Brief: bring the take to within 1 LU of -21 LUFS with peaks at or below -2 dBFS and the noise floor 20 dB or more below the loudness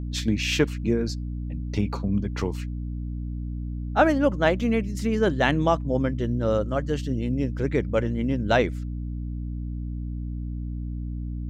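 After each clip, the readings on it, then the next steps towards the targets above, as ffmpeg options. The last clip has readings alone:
hum 60 Hz; harmonics up to 300 Hz; hum level -28 dBFS; loudness -26.0 LUFS; peak -7.0 dBFS; loudness target -21.0 LUFS
-> -af "bandreject=f=60:t=h:w=6,bandreject=f=120:t=h:w=6,bandreject=f=180:t=h:w=6,bandreject=f=240:t=h:w=6,bandreject=f=300:t=h:w=6"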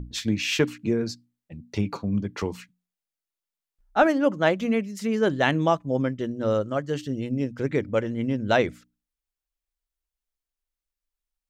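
hum none; loudness -25.5 LUFS; peak -7.5 dBFS; loudness target -21.0 LUFS
-> -af "volume=4.5dB"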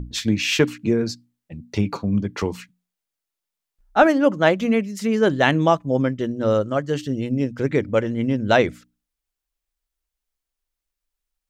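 loudness -21.0 LUFS; peak -3.0 dBFS; noise floor -85 dBFS

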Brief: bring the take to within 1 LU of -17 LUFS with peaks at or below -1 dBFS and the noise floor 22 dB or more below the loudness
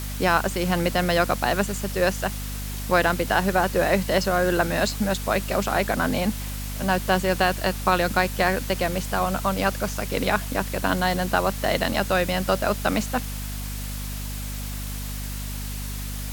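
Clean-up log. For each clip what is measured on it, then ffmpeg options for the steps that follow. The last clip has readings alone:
hum 50 Hz; harmonics up to 250 Hz; hum level -29 dBFS; noise floor -31 dBFS; noise floor target -46 dBFS; loudness -24.0 LUFS; peak -5.0 dBFS; loudness target -17.0 LUFS
-> -af "bandreject=f=50:t=h:w=4,bandreject=f=100:t=h:w=4,bandreject=f=150:t=h:w=4,bandreject=f=200:t=h:w=4,bandreject=f=250:t=h:w=4"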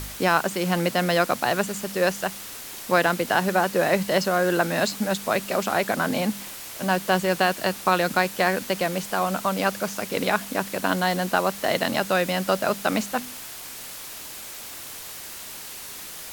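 hum none; noise floor -38 dBFS; noise floor target -46 dBFS
-> -af "afftdn=nr=8:nf=-38"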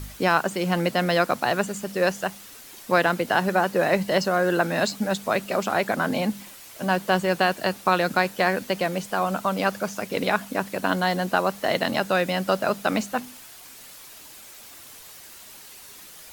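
noise floor -45 dBFS; noise floor target -46 dBFS
-> -af "afftdn=nr=6:nf=-45"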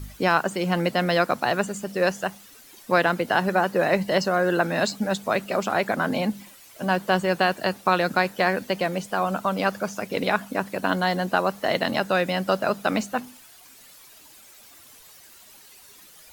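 noise floor -50 dBFS; loudness -24.0 LUFS; peak -6.0 dBFS; loudness target -17.0 LUFS
-> -af "volume=7dB,alimiter=limit=-1dB:level=0:latency=1"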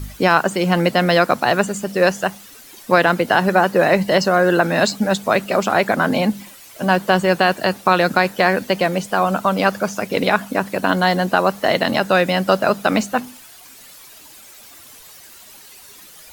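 loudness -17.5 LUFS; peak -1.0 dBFS; noise floor -43 dBFS

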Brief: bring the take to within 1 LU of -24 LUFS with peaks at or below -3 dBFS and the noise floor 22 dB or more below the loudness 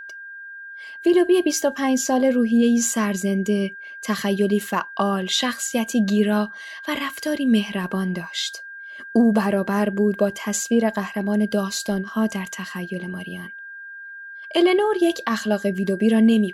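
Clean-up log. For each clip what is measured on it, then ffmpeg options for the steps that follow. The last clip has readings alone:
steady tone 1600 Hz; tone level -35 dBFS; loudness -21.5 LUFS; peak -8.0 dBFS; loudness target -24.0 LUFS
-> -af "bandreject=f=1.6k:w=30"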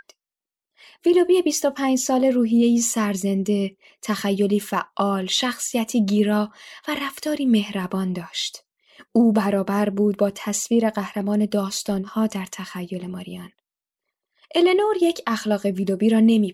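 steady tone none; loudness -21.5 LUFS; peak -8.0 dBFS; loudness target -24.0 LUFS
-> -af "volume=-2.5dB"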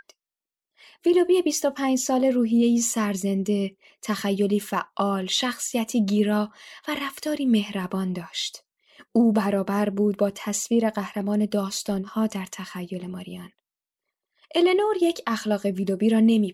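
loudness -24.0 LUFS; peak -10.5 dBFS; noise floor -91 dBFS

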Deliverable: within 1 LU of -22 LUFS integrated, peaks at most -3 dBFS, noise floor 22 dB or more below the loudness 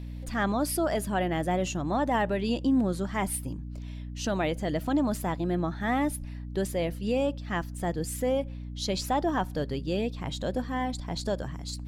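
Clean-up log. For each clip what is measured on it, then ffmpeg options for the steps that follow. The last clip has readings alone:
hum 60 Hz; harmonics up to 300 Hz; hum level -35 dBFS; loudness -29.5 LUFS; peak -16.5 dBFS; loudness target -22.0 LUFS
-> -af "bandreject=f=60:t=h:w=6,bandreject=f=120:t=h:w=6,bandreject=f=180:t=h:w=6,bandreject=f=240:t=h:w=6,bandreject=f=300:t=h:w=6"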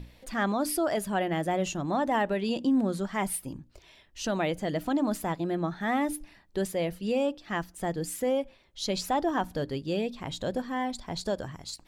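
hum none; loudness -30.0 LUFS; peak -16.5 dBFS; loudness target -22.0 LUFS
-> -af "volume=8dB"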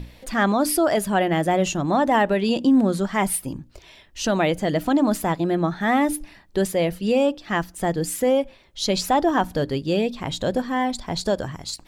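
loudness -22.0 LUFS; peak -8.5 dBFS; noise floor -51 dBFS

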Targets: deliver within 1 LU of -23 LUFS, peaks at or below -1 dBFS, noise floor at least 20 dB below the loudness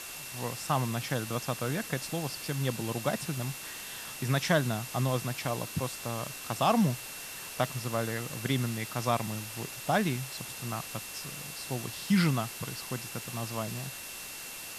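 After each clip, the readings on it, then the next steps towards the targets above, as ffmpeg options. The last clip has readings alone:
steady tone 2700 Hz; tone level -48 dBFS; noise floor -42 dBFS; noise floor target -53 dBFS; loudness -32.5 LUFS; peak -12.5 dBFS; loudness target -23.0 LUFS
-> -af "bandreject=f=2.7k:w=30"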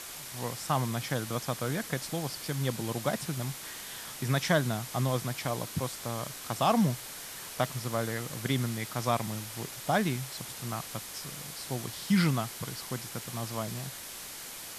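steady tone none; noise floor -43 dBFS; noise floor target -53 dBFS
-> -af "afftdn=nr=10:nf=-43"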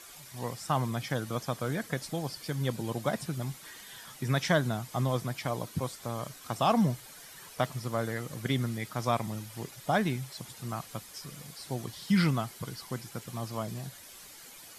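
noise floor -50 dBFS; noise floor target -53 dBFS
-> -af "afftdn=nr=6:nf=-50"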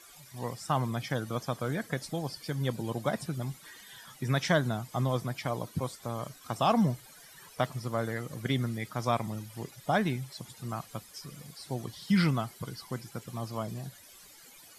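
noise floor -54 dBFS; loudness -33.0 LUFS; peak -12.5 dBFS; loudness target -23.0 LUFS
-> -af "volume=10dB"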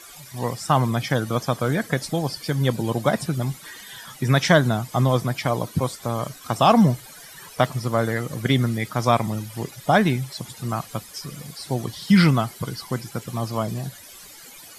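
loudness -23.0 LUFS; peak -2.5 dBFS; noise floor -44 dBFS

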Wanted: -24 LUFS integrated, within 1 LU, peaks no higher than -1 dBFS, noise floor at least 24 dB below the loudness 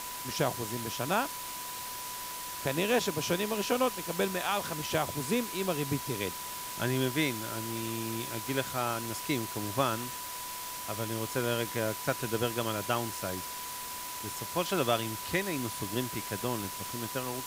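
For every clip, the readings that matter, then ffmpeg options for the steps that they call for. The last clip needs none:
steady tone 990 Hz; tone level -42 dBFS; noise floor -40 dBFS; noise floor target -57 dBFS; loudness -32.5 LUFS; peak -13.0 dBFS; loudness target -24.0 LUFS
-> -af "bandreject=f=990:w=30"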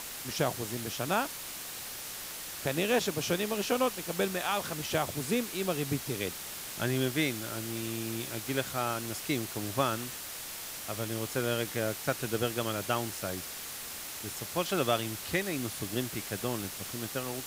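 steady tone none; noise floor -41 dBFS; noise floor target -57 dBFS
-> -af "afftdn=nr=16:nf=-41"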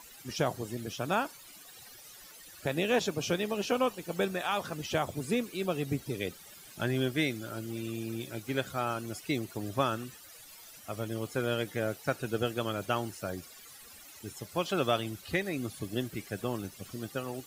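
noise floor -52 dBFS; noise floor target -58 dBFS
-> -af "afftdn=nr=6:nf=-52"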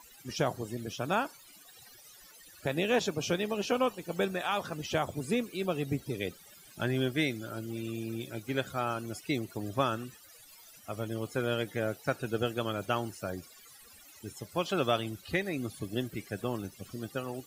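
noise floor -55 dBFS; noise floor target -58 dBFS
-> -af "afftdn=nr=6:nf=-55"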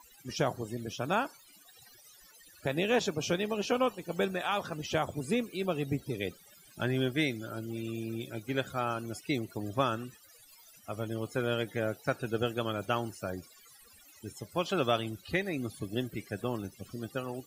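noise floor -58 dBFS; loudness -33.5 LUFS; peak -13.5 dBFS; loudness target -24.0 LUFS
-> -af "volume=9.5dB"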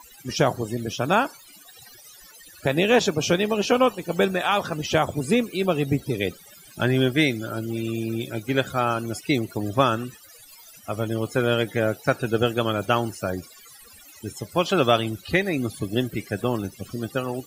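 loudness -24.0 LUFS; peak -4.0 dBFS; noise floor -49 dBFS

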